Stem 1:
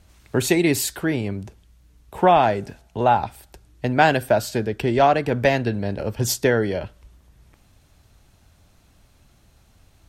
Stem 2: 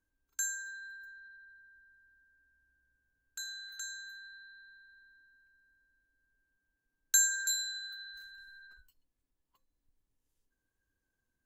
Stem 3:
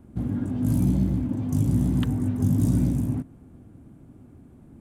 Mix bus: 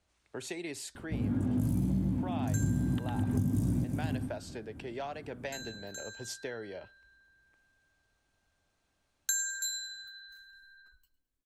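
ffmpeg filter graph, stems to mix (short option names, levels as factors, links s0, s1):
-filter_complex "[0:a]lowpass=f=10000:w=0.5412,lowpass=f=10000:w=1.3066,bass=f=250:g=-10,treble=f=4000:g=-1,acrossover=split=120|3000[s0][s1][s2];[s1]acompressor=threshold=0.1:ratio=6[s3];[s0][s3][s2]amix=inputs=3:normalize=0,volume=0.158,asplit=2[s4][s5];[1:a]adelay=2150,volume=0.75,asplit=2[s6][s7];[s7]volume=0.133[s8];[2:a]adelay=950,volume=1.26,asplit=2[s9][s10];[s10]volume=0.282[s11];[s5]apad=whole_len=253949[s12];[s9][s12]sidechaincompress=threshold=0.00398:ratio=8:attack=16:release=109[s13];[s8][s11]amix=inputs=2:normalize=0,aecho=0:1:106|212|318|424|530:1|0.34|0.116|0.0393|0.0134[s14];[s4][s6][s13][s14]amix=inputs=4:normalize=0,acompressor=threshold=0.0447:ratio=6"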